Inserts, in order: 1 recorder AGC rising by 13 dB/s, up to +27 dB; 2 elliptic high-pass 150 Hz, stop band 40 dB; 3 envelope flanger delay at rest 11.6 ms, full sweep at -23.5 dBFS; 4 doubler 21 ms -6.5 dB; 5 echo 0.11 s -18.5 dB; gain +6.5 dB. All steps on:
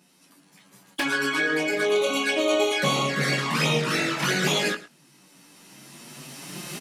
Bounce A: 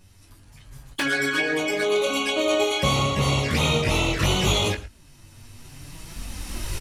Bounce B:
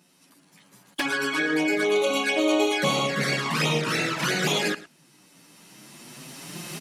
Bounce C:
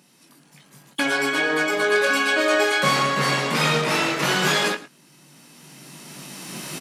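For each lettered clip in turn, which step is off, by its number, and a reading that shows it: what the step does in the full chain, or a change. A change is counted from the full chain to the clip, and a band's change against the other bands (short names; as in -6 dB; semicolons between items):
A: 2, 125 Hz band +5.0 dB; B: 4, 250 Hz band +2.5 dB; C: 3, 1 kHz band +4.0 dB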